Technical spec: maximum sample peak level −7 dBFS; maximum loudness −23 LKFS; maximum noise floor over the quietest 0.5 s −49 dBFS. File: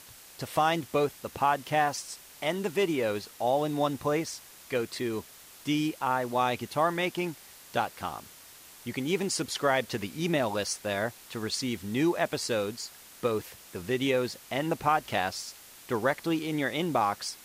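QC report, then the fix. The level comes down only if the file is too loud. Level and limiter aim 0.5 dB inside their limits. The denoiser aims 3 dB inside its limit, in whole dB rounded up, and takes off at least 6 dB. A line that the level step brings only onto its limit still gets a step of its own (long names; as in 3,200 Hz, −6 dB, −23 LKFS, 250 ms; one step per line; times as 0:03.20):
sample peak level −12.5 dBFS: in spec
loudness −30.0 LKFS: in spec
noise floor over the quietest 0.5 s −51 dBFS: in spec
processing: no processing needed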